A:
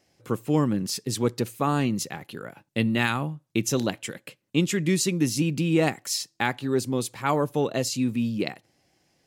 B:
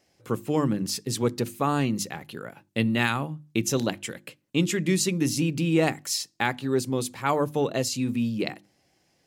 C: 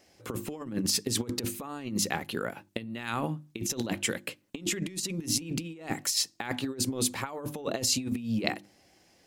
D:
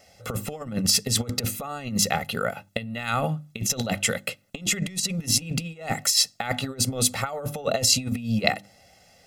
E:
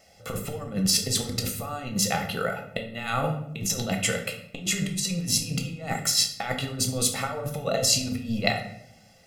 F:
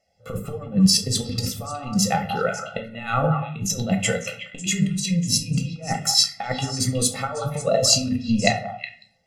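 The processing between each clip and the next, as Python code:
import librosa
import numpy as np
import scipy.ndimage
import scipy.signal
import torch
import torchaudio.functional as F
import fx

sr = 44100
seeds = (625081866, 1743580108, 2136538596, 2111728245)

y1 = fx.hum_notches(x, sr, base_hz=50, count=7)
y2 = fx.over_compress(y1, sr, threshold_db=-30.0, ratio=-0.5)
y2 = fx.peak_eq(y2, sr, hz=140.0, db=-10.0, octaves=0.3)
y3 = y2 + 0.85 * np.pad(y2, (int(1.5 * sr / 1000.0), 0))[:len(y2)]
y3 = y3 * 10.0 ** (4.5 / 20.0)
y4 = fx.room_shoebox(y3, sr, seeds[0], volume_m3=150.0, walls='mixed', distance_m=0.69)
y4 = y4 * 10.0 ** (-3.0 / 20.0)
y5 = fx.echo_stepped(y4, sr, ms=183, hz=1000.0, octaves=1.4, feedback_pct=70, wet_db=-2.5)
y5 = fx.spectral_expand(y5, sr, expansion=1.5)
y5 = y5 * 10.0 ** (4.0 / 20.0)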